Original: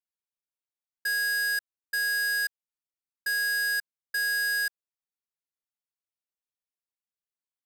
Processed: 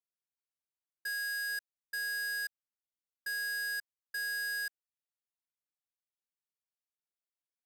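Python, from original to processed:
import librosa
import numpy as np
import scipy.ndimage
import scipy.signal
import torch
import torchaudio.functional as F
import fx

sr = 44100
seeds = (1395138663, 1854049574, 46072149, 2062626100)

y = fx.low_shelf(x, sr, hz=270.0, db=-11.5, at=(1.08, 1.48), fade=0.02)
y = y * 10.0 ** (-8.5 / 20.0)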